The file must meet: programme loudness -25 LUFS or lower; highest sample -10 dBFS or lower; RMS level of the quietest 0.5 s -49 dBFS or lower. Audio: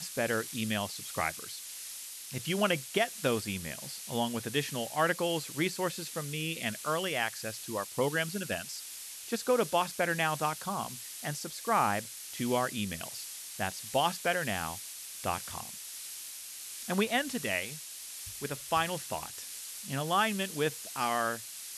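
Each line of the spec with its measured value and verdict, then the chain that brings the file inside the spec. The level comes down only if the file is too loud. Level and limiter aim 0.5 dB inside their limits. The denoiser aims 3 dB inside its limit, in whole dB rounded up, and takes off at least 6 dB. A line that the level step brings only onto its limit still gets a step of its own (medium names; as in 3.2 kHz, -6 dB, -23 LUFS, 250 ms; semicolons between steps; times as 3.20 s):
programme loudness -33.0 LUFS: pass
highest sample -15.0 dBFS: pass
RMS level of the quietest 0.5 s -44 dBFS: fail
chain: noise reduction 8 dB, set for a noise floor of -44 dBFS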